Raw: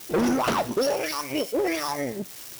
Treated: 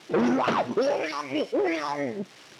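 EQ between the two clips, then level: BPF 130–3500 Hz; 0.0 dB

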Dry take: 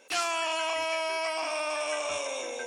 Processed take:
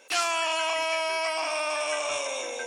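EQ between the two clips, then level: low shelf 320 Hz -8 dB; +3.5 dB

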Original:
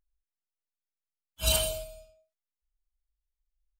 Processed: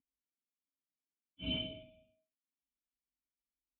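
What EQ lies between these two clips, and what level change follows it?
vocal tract filter i; HPF 140 Hz 12 dB/oct; air absorption 260 m; +10.0 dB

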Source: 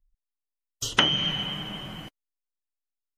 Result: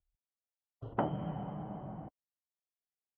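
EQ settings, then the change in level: HPF 58 Hz; ladder low-pass 860 Hz, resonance 50%; bell 520 Hz -5 dB 2 oct; +6.5 dB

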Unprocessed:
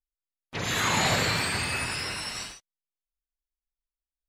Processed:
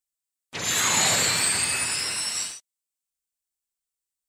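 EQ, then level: HPF 160 Hz 6 dB/oct; high shelf 3500 Hz +9.5 dB; bell 8000 Hz +8 dB 0.42 oct; -1.5 dB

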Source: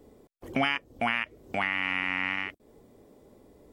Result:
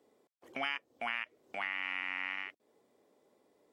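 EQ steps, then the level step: weighting filter A; -9.0 dB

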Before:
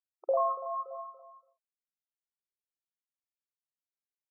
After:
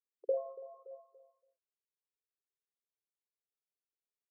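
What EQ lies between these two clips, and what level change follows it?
Butterworth band-pass 430 Hz, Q 3.1; +3.5 dB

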